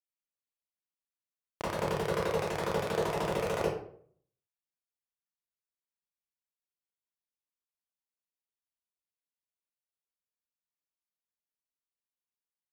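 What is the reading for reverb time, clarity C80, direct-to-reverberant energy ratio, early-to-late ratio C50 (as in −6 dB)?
0.60 s, 5.5 dB, −10.0 dB, 0.5 dB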